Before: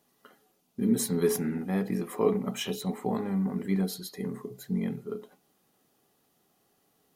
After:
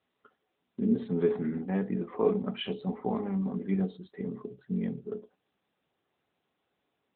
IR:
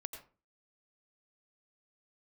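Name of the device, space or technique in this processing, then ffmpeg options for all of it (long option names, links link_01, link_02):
mobile call with aggressive noise cancelling: -filter_complex "[0:a]asplit=3[link_01][link_02][link_03];[link_01]afade=type=out:start_time=2.37:duration=0.02[link_04];[link_02]lowpass=frequency=9600:width=0.5412,lowpass=frequency=9600:width=1.3066,afade=type=in:start_time=2.37:duration=0.02,afade=type=out:start_time=3.47:duration=0.02[link_05];[link_03]afade=type=in:start_time=3.47:duration=0.02[link_06];[link_04][link_05][link_06]amix=inputs=3:normalize=0,highpass=frequency=130:poles=1,afftdn=noise_reduction=14:noise_floor=-46" -ar 8000 -c:a libopencore_amrnb -b:a 10200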